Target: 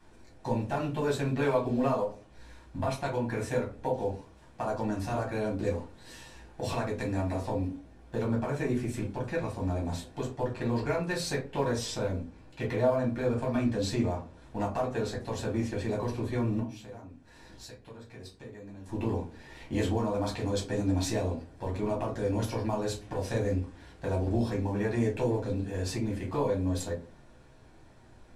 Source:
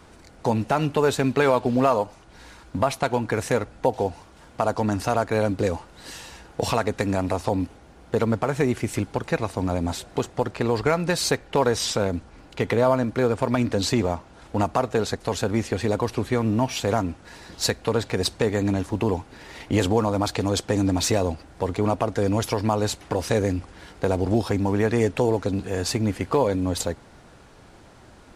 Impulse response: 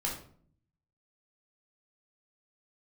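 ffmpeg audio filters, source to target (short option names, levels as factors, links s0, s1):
-filter_complex "[0:a]asettb=1/sr,asplit=3[s0][s1][s2];[s0]atrim=end=16.594[s3];[s1]atrim=start=16.59:end=18.86,asetpts=PTS-STARTPTS,afade=t=in:d=0.004:c=qsin,afade=t=out:st=2.266:d=0.004:c=qsin,acompressor=threshold=0.01:ratio=3[s4];[s2]atrim=start=18.856[s5];[s3][s4]acrossfade=d=0.004:c1=hsin:c2=qsin[s6];[s6][s5]acrossfade=d=0.004:c1=qsin:c2=hsin[s7];[1:a]atrim=start_sample=2205,asetrate=83790,aresample=44100[s8];[s7][s8]afir=irnorm=-1:irlink=0,volume=0.376"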